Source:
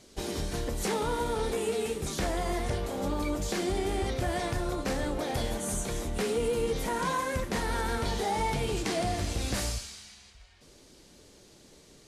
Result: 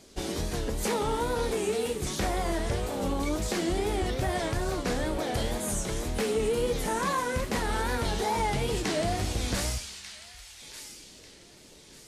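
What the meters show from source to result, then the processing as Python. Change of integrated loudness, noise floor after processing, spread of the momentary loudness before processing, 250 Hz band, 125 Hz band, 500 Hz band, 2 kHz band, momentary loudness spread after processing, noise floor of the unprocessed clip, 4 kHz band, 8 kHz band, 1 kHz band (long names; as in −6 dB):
+1.5 dB, −52 dBFS, 4 LU, +1.5 dB, +1.5 dB, +1.5 dB, +2.0 dB, 14 LU, −56 dBFS, +2.0 dB, +2.0 dB, +1.5 dB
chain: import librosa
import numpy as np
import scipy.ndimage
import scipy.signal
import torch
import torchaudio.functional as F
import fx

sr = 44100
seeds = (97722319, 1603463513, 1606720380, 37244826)

y = fx.wow_flutter(x, sr, seeds[0], rate_hz=2.1, depth_cents=120.0)
y = fx.echo_wet_highpass(y, sr, ms=1192, feedback_pct=32, hz=2100.0, wet_db=-9.5)
y = y * librosa.db_to_amplitude(1.5)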